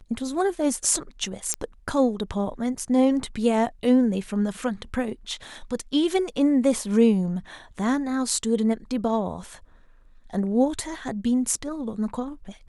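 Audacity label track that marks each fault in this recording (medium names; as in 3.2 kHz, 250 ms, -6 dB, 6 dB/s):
1.540000	1.540000	pop -10 dBFS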